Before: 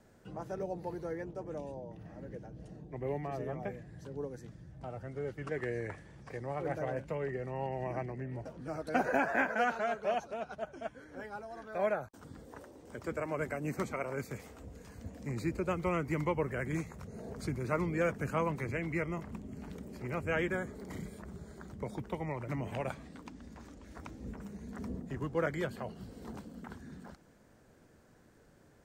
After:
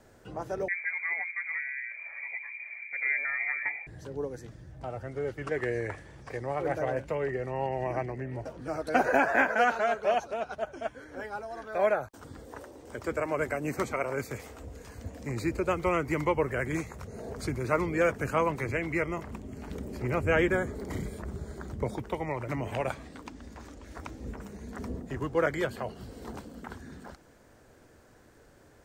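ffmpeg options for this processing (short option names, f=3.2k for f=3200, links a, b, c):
-filter_complex "[0:a]asettb=1/sr,asplit=3[a][b][c];[a]atrim=end=0.684[d];[b]atrim=start=0.68:end=3.87,asetpts=PTS-STARTPTS,afade=t=in:d=0.004:c=qsin,afade=t=out:st=3.186:d=0.004:c=qsin,lowpass=f=2.1k:t=q:w=0.5098,lowpass=f=2.1k:t=q:w=0.6013,lowpass=f=2.1k:t=q:w=0.9,lowpass=f=2.1k:t=q:w=2.563,afreqshift=-2500[e];[c]atrim=start=3.866[f];[d][e]acrossfade=d=0.004:c1=hsin:c2=qsin[g];[g][f]acrossfade=d=0.004:c1=qsin:c2=hsin,asettb=1/sr,asplit=3[h][i][j];[h]atrim=end=19.714[k];[i]atrim=start=19.71:end=21.96,asetpts=PTS-STARTPTS,afade=t=in:d=0.004:c=qsin,afade=t=out:st=2.246:d=0.004:c=qsin,lowshelf=f=400:g=6[l];[j]atrim=start=21.956[m];[k][l]acrossfade=d=0.004:c1=hsin:c2=qsin[n];[n][m]acrossfade=d=0.004:c1=qsin:c2=hsin,equalizer=f=180:w=1.7:g=-8,volume=6.5dB"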